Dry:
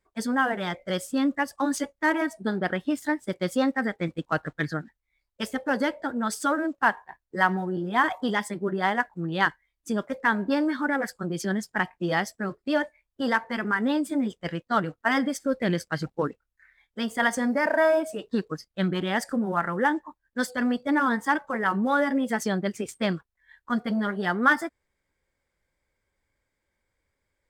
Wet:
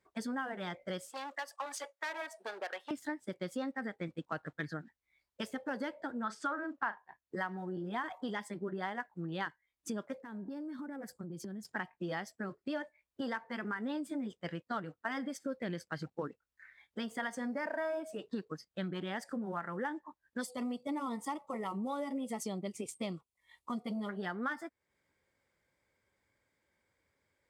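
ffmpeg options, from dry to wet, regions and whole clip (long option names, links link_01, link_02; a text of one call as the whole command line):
ffmpeg -i in.wav -filter_complex "[0:a]asettb=1/sr,asplit=3[link_01][link_02][link_03];[link_01]atrim=end=1.094[link_04];[link_02]atrim=start=1.09:end=2.91,asetpts=PTS-STARTPTS,afade=type=in:duration=0.004:curve=qsin,afade=type=out:start_time=1.816:duration=0.004:curve=qsin,asoftclip=type=hard:threshold=-24dB,highpass=frequency=530:width=0.5412,highpass=frequency=530:width=1.3066[link_05];[link_03]atrim=start=2.906[link_06];[link_04][link_05]acrossfade=duration=0.004:curve1=hsin:curve2=qsin[link_07];[link_07][link_06]acrossfade=duration=0.004:curve1=qsin:curve2=hsin,asettb=1/sr,asplit=3[link_08][link_09][link_10];[link_08]atrim=end=6.244[link_11];[link_09]atrim=start=6.24:end=6.98,asetpts=PTS-STARTPTS,afade=type=in:duration=0.004:curve=qsin,afade=type=out:start_time=0.736:duration=0.004:curve=qsin,lowpass=6100,equalizer=frequency=1300:width_type=o:width=1.3:gain=8,asplit=2[link_12][link_13];[link_13]adelay=38,volume=-14dB[link_14];[link_12][link_14]amix=inputs=2:normalize=0,atrim=end_sample=32634[link_15];[link_10]atrim=start=6.976[link_16];[link_11][link_15]acrossfade=duration=0.004:curve1=hsin:curve2=qsin[link_17];[link_17][link_16]acrossfade=duration=0.004:curve1=qsin:curve2=hsin,asettb=1/sr,asplit=3[link_18][link_19][link_20];[link_18]atrim=end=10.224[link_21];[link_19]atrim=start=10.22:end=11.65,asetpts=PTS-STARTPTS,afade=type=in:duration=0.004:curve=qsin,afade=type=out:start_time=1.426:duration=0.004:curve=qsin,equalizer=frequency=2100:width=0.31:gain=-15,acompressor=threshold=-40dB:ratio=4:attack=3.2:release=140:knee=1:detection=peak[link_22];[link_20]atrim=start=11.646[link_23];[link_21][link_22]acrossfade=duration=0.004:curve1=hsin:curve2=qsin[link_24];[link_24][link_23]acrossfade=duration=0.004:curve1=qsin:curve2=hsin,asettb=1/sr,asplit=3[link_25][link_26][link_27];[link_25]atrim=end=20.414[link_28];[link_26]atrim=start=20.41:end=24.09,asetpts=PTS-STARTPTS,afade=type=in:duration=0.004:curve=qsin,afade=type=out:start_time=3.676:duration=0.004:curve=qsin,asuperstop=centerf=1600:order=4:qfactor=2,equalizer=frequency=9700:width=1.1:gain=10[link_29];[link_27]atrim=start=24.086[link_30];[link_28][link_29]acrossfade=duration=0.004:curve1=hsin:curve2=qsin[link_31];[link_31][link_30]acrossfade=duration=0.004:curve1=qsin:curve2=hsin,acompressor=threshold=-41dB:ratio=3,highpass=93,highshelf=frequency=8500:gain=-5.5,volume=1dB" out.wav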